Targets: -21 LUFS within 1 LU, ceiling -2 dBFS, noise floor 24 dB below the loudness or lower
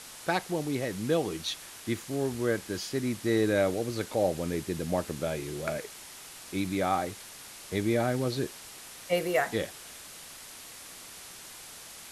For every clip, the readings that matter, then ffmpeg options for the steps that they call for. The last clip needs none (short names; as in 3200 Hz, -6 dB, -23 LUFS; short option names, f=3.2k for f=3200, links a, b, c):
noise floor -47 dBFS; noise floor target -55 dBFS; loudness -30.5 LUFS; peak -14.5 dBFS; loudness target -21.0 LUFS
-> -af "afftdn=nr=8:nf=-47"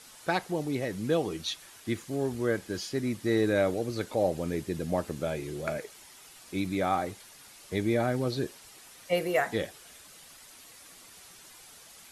noise floor -52 dBFS; noise floor target -55 dBFS
-> -af "afftdn=nr=6:nf=-52"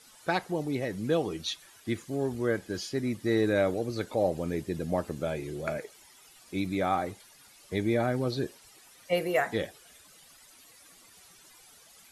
noise floor -56 dBFS; loudness -31.0 LUFS; peak -14.5 dBFS; loudness target -21.0 LUFS
-> -af "volume=10dB"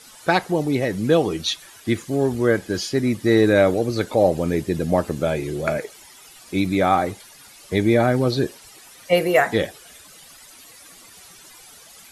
loudness -21.0 LUFS; peak -4.5 dBFS; noise floor -46 dBFS